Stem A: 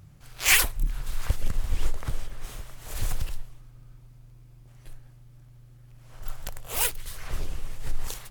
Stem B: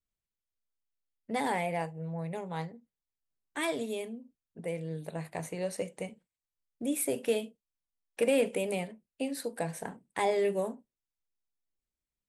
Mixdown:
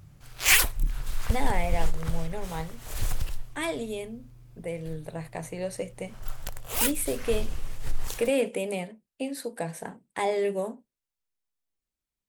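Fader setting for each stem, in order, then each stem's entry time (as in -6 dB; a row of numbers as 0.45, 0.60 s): 0.0, +1.5 dB; 0.00, 0.00 s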